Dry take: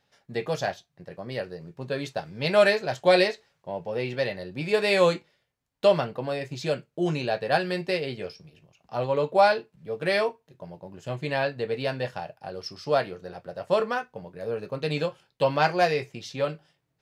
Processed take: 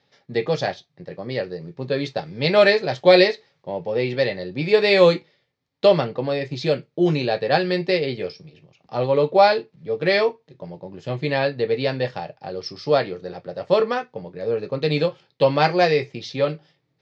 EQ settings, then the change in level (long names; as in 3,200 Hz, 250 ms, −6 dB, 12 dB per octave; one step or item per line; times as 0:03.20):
loudspeaker in its box 120–5,000 Hz, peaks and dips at 210 Hz −4 dB, 670 Hz −6 dB, 1,000 Hz −6 dB, 1,500 Hz −8 dB, 2,800 Hz −6 dB
+8.5 dB